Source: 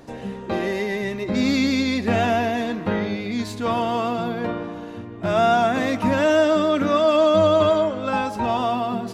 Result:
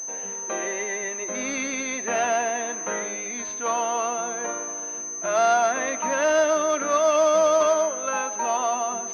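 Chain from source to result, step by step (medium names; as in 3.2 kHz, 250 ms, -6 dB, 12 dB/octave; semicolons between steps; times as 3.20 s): high-pass 570 Hz 12 dB/octave; band-stop 810 Hz, Q 12; class-D stage that switches slowly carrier 6.2 kHz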